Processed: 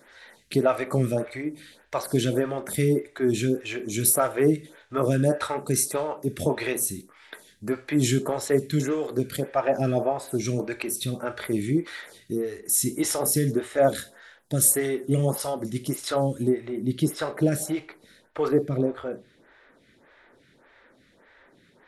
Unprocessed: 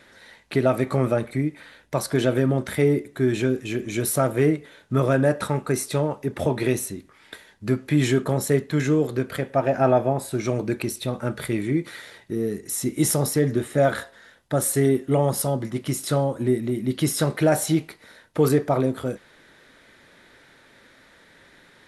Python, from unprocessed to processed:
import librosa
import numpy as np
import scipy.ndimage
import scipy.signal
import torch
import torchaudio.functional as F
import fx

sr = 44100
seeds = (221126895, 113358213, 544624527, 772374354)

y = fx.high_shelf(x, sr, hz=3700.0, db=fx.steps((0.0, 7.5), (16.48, -3.5), (18.47, -10.0)))
y = fx.rev_schroeder(y, sr, rt60_s=0.37, comb_ms=29, drr_db=14.5)
y = fx.stagger_phaser(y, sr, hz=1.7)